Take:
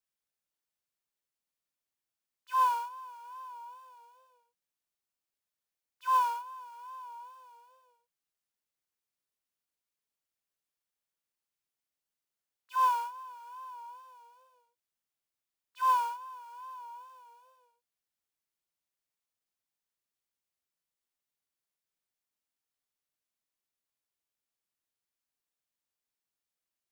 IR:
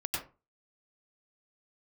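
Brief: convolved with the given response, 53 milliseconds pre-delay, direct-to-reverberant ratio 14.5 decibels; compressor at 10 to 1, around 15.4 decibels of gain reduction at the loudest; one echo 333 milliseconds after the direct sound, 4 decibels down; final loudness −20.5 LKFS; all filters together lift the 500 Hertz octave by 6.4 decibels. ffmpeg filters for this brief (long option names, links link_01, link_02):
-filter_complex "[0:a]equalizer=frequency=500:width_type=o:gain=6.5,acompressor=threshold=-37dB:ratio=10,aecho=1:1:333:0.631,asplit=2[link_01][link_02];[1:a]atrim=start_sample=2205,adelay=53[link_03];[link_02][link_03]afir=irnorm=-1:irlink=0,volume=-19dB[link_04];[link_01][link_04]amix=inputs=2:normalize=0,volume=22dB"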